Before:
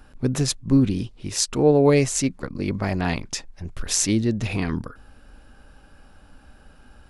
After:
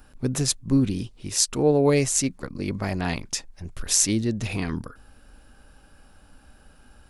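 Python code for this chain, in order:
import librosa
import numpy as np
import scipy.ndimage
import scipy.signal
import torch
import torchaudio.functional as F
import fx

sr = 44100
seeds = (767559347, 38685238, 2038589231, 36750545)

y = fx.high_shelf(x, sr, hz=6800.0, db=10.0)
y = y * librosa.db_to_amplitude(-3.0)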